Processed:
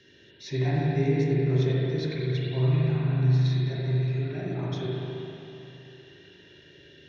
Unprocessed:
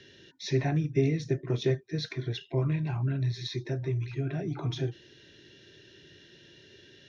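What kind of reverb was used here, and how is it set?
spring tank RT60 3.2 s, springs 39/55 ms, chirp 60 ms, DRR -6.5 dB; trim -4.5 dB

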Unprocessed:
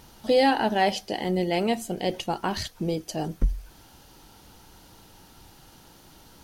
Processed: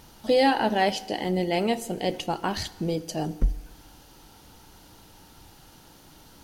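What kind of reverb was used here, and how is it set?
FDN reverb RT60 1.4 s, low-frequency decay 1×, high-frequency decay 0.85×, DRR 15 dB

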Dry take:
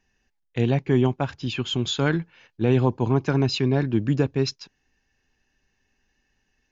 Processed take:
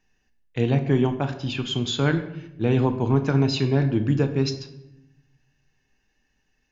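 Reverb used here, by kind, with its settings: simulated room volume 280 m³, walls mixed, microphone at 0.48 m; trim -1 dB

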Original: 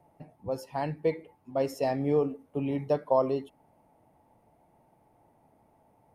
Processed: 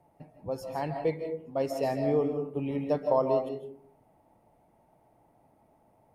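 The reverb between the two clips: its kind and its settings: algorithmic reverb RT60 0.54 s, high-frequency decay 0.3×, pre-delay 115 ms, DRR 5.5 dB; trim -1.5 dB

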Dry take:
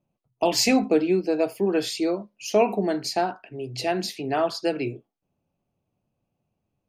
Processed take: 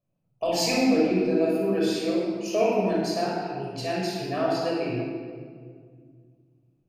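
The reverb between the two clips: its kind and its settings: simulated room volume 3100 m³, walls mixed, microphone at 5.9 m; trim -10 dB

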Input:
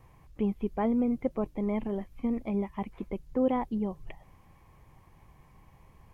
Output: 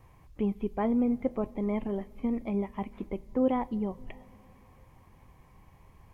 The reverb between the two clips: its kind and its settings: two-slope reverb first 0.26 s, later 4.3 s, from -20 dB, DRR 14.5 dB

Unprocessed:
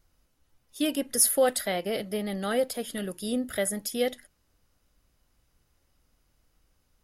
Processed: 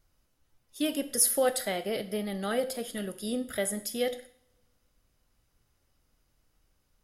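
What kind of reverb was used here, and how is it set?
two-slope reverb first 0.57 s, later 1.8 s, from -26 dB, DRR 10.5 dB; trim -2.5 dB

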